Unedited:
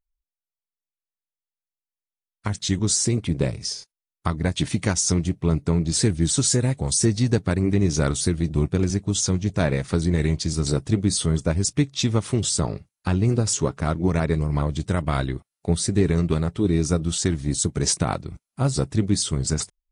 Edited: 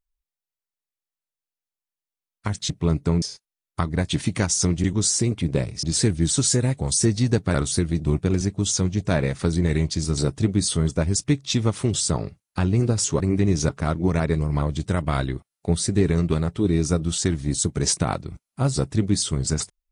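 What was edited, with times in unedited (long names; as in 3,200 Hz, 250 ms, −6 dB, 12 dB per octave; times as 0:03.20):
0:02.70–0:03.69: swap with 0:05.31–0:05.83
0:07.54–0:08.03: move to 0:13.69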